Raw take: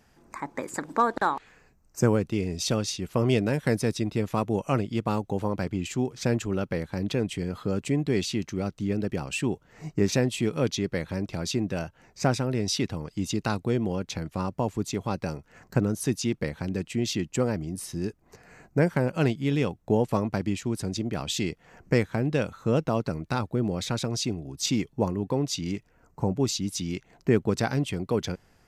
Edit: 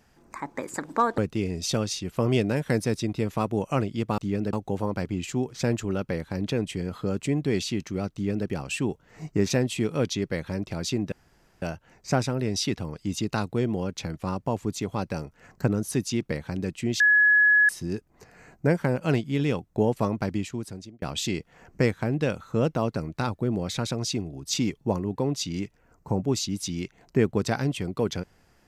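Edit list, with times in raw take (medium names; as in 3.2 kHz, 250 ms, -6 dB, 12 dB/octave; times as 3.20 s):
1.18–2.15 s: delete
8.75–9.10 s: copy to 5.15 s
11.74 s: insert room tone 0.50 s
17.12–17.81 s: bleep 1.69 kHz -15 dBFS
20.45–21.14 s: fade out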